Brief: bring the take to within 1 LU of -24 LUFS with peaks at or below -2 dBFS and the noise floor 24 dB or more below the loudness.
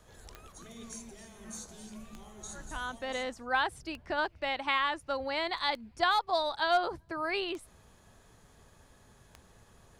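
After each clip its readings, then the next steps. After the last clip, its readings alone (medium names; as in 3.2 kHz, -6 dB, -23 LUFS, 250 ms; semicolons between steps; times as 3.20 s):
clicks found 6; loudness -32.0 LUFS; peak level -15.0 dBFS; loudness target -24.0 LUFS
-> de-click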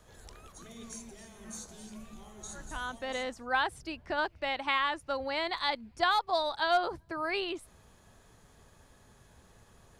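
clicks found 0; loudness -32.0 LUFS; peak level -15.0 dBFS; loudness target -24.0 LUFS
-> trim +8 dB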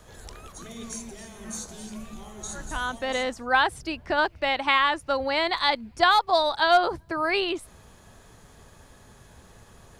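loudness -24.0 LUFS; peak level -7.0 dBFS; noise floor -53 dBFS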